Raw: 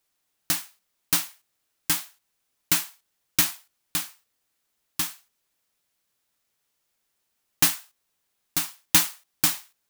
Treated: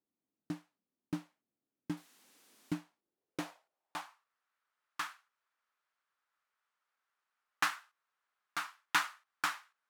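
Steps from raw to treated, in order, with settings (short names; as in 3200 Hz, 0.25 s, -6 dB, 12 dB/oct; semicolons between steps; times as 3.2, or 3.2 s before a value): 1.97–2.74 switching spikes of -23.5 dBFS; band-pass sweep 250 Hz -> 1300 Hz, 2.84–4.37; gain +3 dB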